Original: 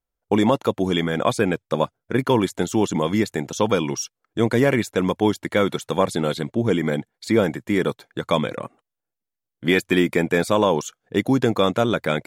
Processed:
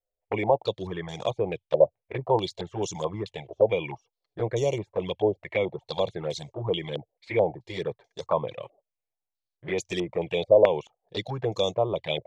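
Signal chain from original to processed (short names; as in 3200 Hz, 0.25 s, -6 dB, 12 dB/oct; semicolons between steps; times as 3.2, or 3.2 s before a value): fixed phaser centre 600 Hz, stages 4; envelope flanger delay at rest 9.6 ms, full sweep at -19.5 dBFS; stepped low-pass 4.6 Hz 590–6000 Hz; gain -3.5 dB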